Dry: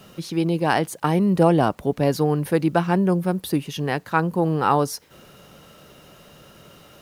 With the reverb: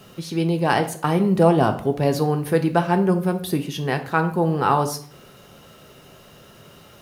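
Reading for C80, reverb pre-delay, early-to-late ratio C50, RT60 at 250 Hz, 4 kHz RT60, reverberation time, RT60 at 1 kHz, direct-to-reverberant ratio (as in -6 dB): 15.5 dB, 3 ms, 12.5 dB, 0.60 s, 0.40 s, 0.50 s, 0.50 s, 6.0 dB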